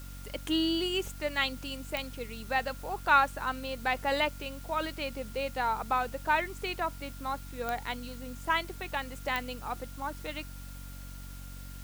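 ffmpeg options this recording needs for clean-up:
ffmpeg -i in.wav -af "adeclick=threshold=4,bandreject=frequency=46.6:width_type=h:width=4,bandreject=frequency=93.2:width_type=h:width=4,bandreject=frequency=139.8:width_type=h:width=4,bandreject=frequency=186.4:width_type=h:width=4,bandreject=frequency=233:width_type=h:width=4,bandreject=frequency=279.6:width_type=h:width=4,bandreject=frequency=1400:width=30,afwtdn=0.0022" out.wav

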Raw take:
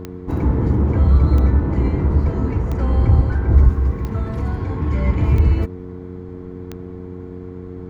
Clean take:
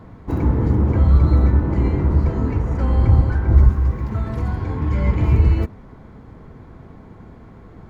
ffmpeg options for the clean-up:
ffmpeg -i in.wav -af "adeclick=threshold=4,bandreject=frequency=90.7:width_type=h:width=4,bandreject=frequency=181.4:width_type=h:width=4,bandreject=frequency=272.1:width_type=h:width=4,bandreject=frequency=362.8:width_type=h:width=4,bandreject=frequency=453.5:width_type=h:width=4" out.wav

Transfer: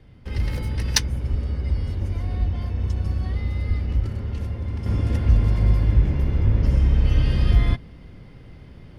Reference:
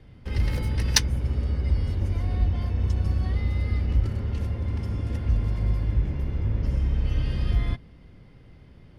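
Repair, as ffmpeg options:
ffmpeg -i in.wav -filter_complex "[0:a]asplit=3[link_01][link_02][link_03];[link_01]afade=type=out:start_time=1.3:duration=0.02[link_04];[link_02]highpass=frequency=140:width=0.5412,highpass=frequency=140:width=1.3066,afade=type=in:start_time=1.3:duration=0.02,afade=type=out:start_time=1.42:duration=0.02[link_05];[link_03]afade=type=in:start_time=1.42:duration=0.02[link_06];[link_04][link_05][link_06]amix=inputs=3:normalize=0,asplit=3[link_07][link_08][link_09];[link_07]afade=type=out:start_time=3.67:duration=0.02[link_10];[link_08]highpass=frequency=140:width=0.5412,highpass=frequency=140:width=1.3066,afade=type=in:start_time=3.67:duration=0.02,afade=type=out:start_time=3.79:duration=0.02[link_11];[link_09]afade=type=in:start_time=3.79:duration=0.02[link_12];[link_10][link_11][link_12]amix=inputs=3:normalize=0,asplit=3[link_13][link_14][link_15];[link_13]afade=type=out:start_time=6.44:duration=0.02[link_16];[link_14]highpass=frequency=140:width=0.5412,highpass=frequency=140:width=1.3066,afade=type=in:start_time=6.44:duration=0.02,afade=type=out:start_time=6.56:duration=0.02[link_17];[link_15]afade=type=in:start_time=6.56:duration=0.02[link_18];[link_16][link_17][link_18]amix=inputs=3:normalize=0,asetnsamples=nb_out_samples=441:pad=0,asendcmd='4.86 volume volume -6.5dB',volume=0dB" out.wav

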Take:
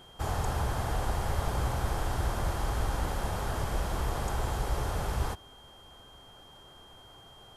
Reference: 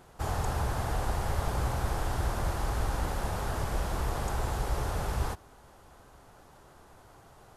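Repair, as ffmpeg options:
ffmpeg -i in.wav -af "bandreject=frequency=3200:width=30" out.wav

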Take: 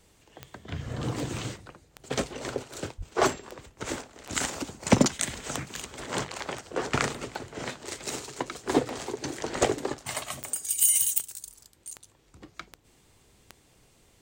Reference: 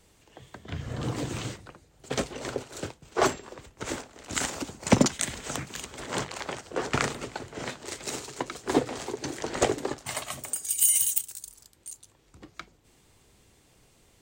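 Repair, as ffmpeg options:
ffmpeg -i in.wav -filter_complex "[0:a]adeclick=threshold=4,asplit=3[link_01][link_02][link_03];[link_01]afade=type=out:start_time=2.97:duration=0.02[link_04];[link_02]highpass=frequency=140:width=0.5412,highpass=frequency=140:width=1.3066,afade=type=in:start_time=2.97:duration=0.02,afade=type=out:start_time=3.09:duration=0.02[link_05];[link_03]afade=type=in:start_time=3.09:duration=0.02[link_06];[link_04][link_05][link_06]amix=inputs=3:normalize=0" out.wav

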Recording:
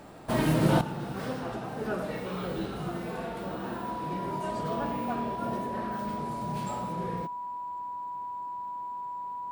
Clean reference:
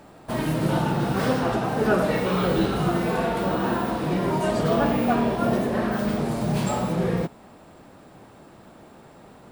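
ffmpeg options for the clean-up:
ffmpeg -i in.wav -af "bandreject=frequency=980:width=30,asetnsamples=nb_out_samples=441:pad=0,asendcmd='0.81 volume volume 11.5dB',volume=0dB" out.wav

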